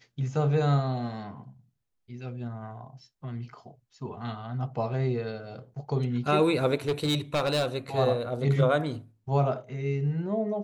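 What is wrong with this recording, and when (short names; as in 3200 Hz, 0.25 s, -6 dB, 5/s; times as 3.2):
6.88–7.66 clipped -21.5 dBFS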